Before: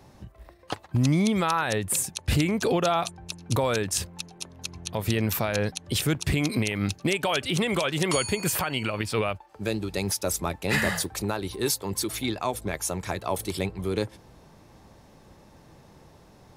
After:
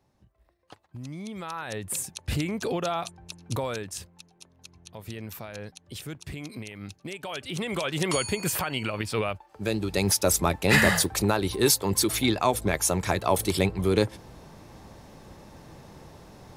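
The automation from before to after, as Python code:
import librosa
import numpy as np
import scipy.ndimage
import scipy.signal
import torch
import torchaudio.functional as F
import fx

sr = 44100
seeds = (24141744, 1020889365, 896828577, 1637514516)

y = fx.gain(x, sr, db=fx.line((1.09, -17.0), (1.93, -5.0), (3.6, -5.0), (4.18, -13.0), (7.06, -13.0), (7.97, -1.5), (9.49, -1.5), (10.15, 5.0)))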